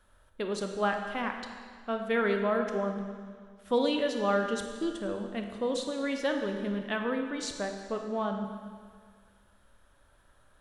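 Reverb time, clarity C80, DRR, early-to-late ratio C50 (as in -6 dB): 1.8 s, 6.5 dB, 4.0 dB, 5.0 dB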